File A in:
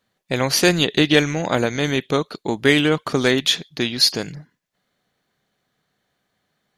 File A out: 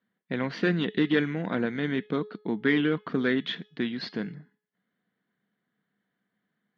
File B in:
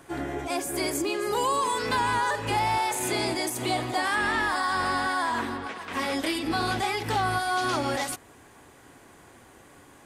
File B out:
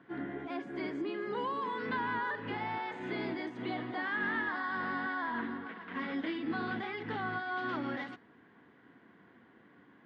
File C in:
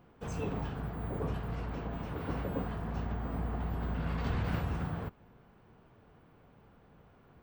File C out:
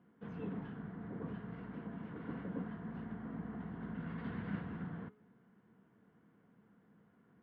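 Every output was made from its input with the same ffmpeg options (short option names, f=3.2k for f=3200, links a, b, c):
-af "aeval=exprs='clip(val(0),-1,0.299)':c=same,highpass=190,equalizer=f=200:t=q:w=4:g=8,equalizer=f=380:t=q:w=4:g=-4,equalizer=f=580:t=q:w=4:g=-10,equalizer=f=820:t=q:w=4:g=-9,equalizer=f=1.2k:t=q:w=4:g=-6,equalizer=f=2.5k:t=q:w=4:g=-10,lowpass=f=2.7k:w=0.5412,lowpass=f=2.7k:w=1.3066,bandreject=f=423:t=h:w=4,bandreject=f=846:t=h:w=4,bandreject=f=1.269k:t=h:w=4,bandreject=f=1.692k:t=h:w=4,bandreject=f=2.115k:t=h:w=4,bandreject=f=2.538k:t=h:w=4,bandreject=f=2.961k:t=h:w=4,bandreject=f=3.384k:t=h:w=4,bandreject=f=3.807k:t=h:w=4,bandreject=f=4.23k:t=h:w=4,bandreject=f=4.653k:t=h:w=4,bandreject=f=5.076k:t=h:w=4,bandreject=f=5.499k:t=h:w=4,bandreject=f=5.922k:t=h:w=4,bandreject=f=6.345k:t=h:w=4,bandreject=f=6.768k:t=h:w=4,bandreject=f=7.191k:t=h:w=4,bandreject=f=7.614k:t=h:w=4,bandreject=f=8.037k:t=h:w=4,bandreject=f=8.46k:t=h:w=4,bandreject=f=8.883k:t=h:w=4,bandreject=f=9.306k:t=h:w=4,bandreject=f=9.729k:t=h:w=4,bandreject=f=10.152k:t=h:w=4,bandreject=f=10.575k:t=h:w=4,bandreject=f=10.998k:t=h:w=4,bandreject=f=11.421k:t=h:w=4,bandreject=f=11.844k:t=h:w=4,bandreject=f=12.267k:t=h:w=4,bandreject=f=12.69k:t=h:w=4,volume=-4dB"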